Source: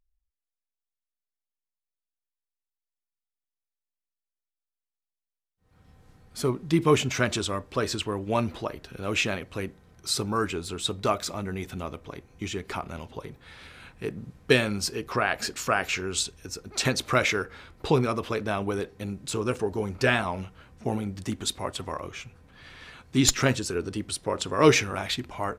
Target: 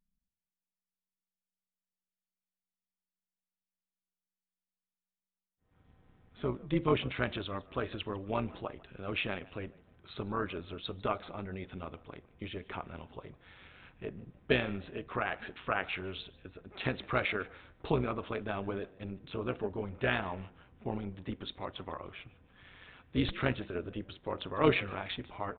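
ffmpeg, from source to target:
-filter_complex "[0:a]tremolo=f=190:d=0.667,asplit=3[a][b][c];[b]adelay=150,afreqshift=70,volume=-22.5dB[d];[c]adelay=300,afreqshift=140,volume=-32.1dB[e];[a][d][e]amix=inputs=3:normalize=0,aresample=8000,aresample=44100,volume=-5dB"

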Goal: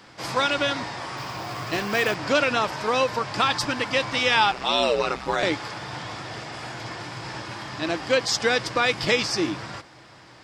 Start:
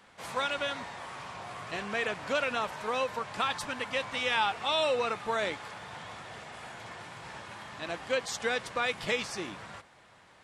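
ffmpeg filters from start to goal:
-filter_complex "[0:a]asettb=1/sr,asplit=3[a][b][c];[a]atrim=end=1.174[d];[b]atrim=start=1.17:end=2.15,asetpts=PTS-STARTPTS,afade=t=in:d=0.004:c=qsin,afade=t=out:st=0.976:d=0.004:c=qsin,acrusher=bits=4:mode=log:mix=0:aa=0.000001[e];[c]atrim=start=2.146[f];[d][e]acrossfade=d=0.004:c1=hsin:c2=qsin[g];[g][f]acrossfade=d=0.004:c1=qsin:c2=hsin,equalizer=f=125:t=o:w=0.33:g=10,equalizer=f=315:t=o:w=0.33:g=11,equalizer=f=5k:t=o:w=0.33:g=11,equalizer=f=10k:t=o:w=0.33:g=-6,asettb=1/sr,asplit=3[h][i][j];[h]atrim=end=4.514[k];[i]atrim=start=4.51:end=5.43,asetpts=PTS-STARTPTS,afade=t=in:d=0.004:c=qsin,afade=t=out:st=0.916:d=0.004:c=qsin,aeval=exprs='val(0)*sin(2*PI*63*n/s)':c=same[l];[j]atrim=start=5.426[m];[k][l]acrossfade=d=0.004:c1=hsin:c2=qsin[n];[n][m]acrossfade=d=0.004:c1=qsin:c2=hsin,volume=8dB"

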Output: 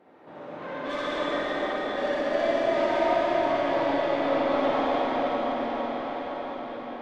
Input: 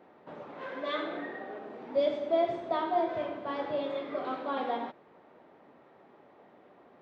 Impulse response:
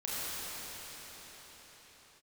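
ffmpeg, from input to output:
-filter_complex "[0:a]asoftclip=type=tanh:threshold=-30.5dB[a];[1:a]atrim=start_sample=2205,asetrate=25137,aresample=44100[b];[a][b]afir=irnorm=-1:irlink=0"

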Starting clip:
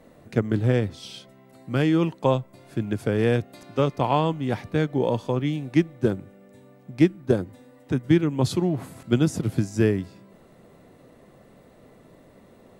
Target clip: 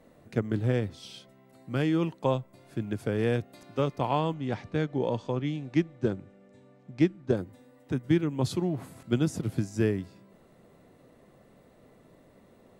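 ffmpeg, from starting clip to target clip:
-filter_complex "[0:a]asettb=1/sr,asplit=3[a][b][c];[a]atrim=end=4.344[d];[b]atrim=start=4.34:end=7.37,asetpts=PTS-STARTPTS,afade=t=in:d=0.004:c=qsin,afade=t=out:st=3.026:d=0.004:c=qsin,lowpass=f=7.6k:w=0.5412,lowpass=f=7.6k:w=1.3066[e];[c]atrim=start=7.366[f];[d][e]acrossfade=d=0.004:c1=hsin:c2=qsin[g];[g][f]acrossfade=d=0.004:c1=qsin:c2=hsin,volume=-5.5dB"

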